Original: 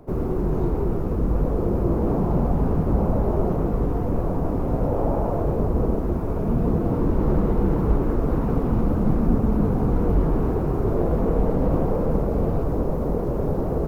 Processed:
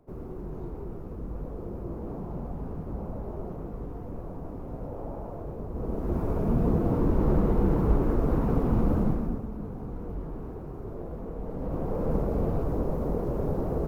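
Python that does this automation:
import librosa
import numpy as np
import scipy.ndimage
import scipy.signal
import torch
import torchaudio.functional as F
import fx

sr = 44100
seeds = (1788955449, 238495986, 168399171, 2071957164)

y = fx.gain(x, sr, db=fx.line((5.68, -14.5), (6.19, -3.0), (8.99, -3.0), (9.49, -16.0), (11.38, -16.0), (12.11, -5.0)))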